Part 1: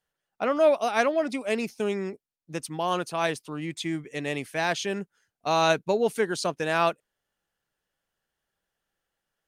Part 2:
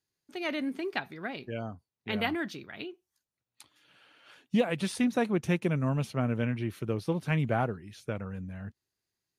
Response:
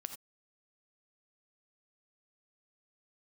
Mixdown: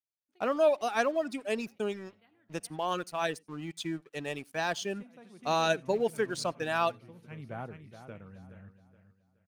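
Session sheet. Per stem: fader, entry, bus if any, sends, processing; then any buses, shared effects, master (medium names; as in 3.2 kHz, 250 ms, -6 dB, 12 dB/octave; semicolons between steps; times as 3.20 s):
-4.5 dB, 0.00 s, send -16 dB, no echo send, reverb removal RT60 1.2 s; band-stop 2.1 kHz, Q 7.4; crossover distortion -50 dBFS
4.66 s -23 dB -> 5.11 s -12.5 dB, 0.00 s, send -14.5 dB, echo send -10.5 dB, auto duck -22 dB, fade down 0.95 s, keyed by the first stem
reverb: on, pre-delay 3 ms
echo: feedback delay 422 ms, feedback 32%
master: none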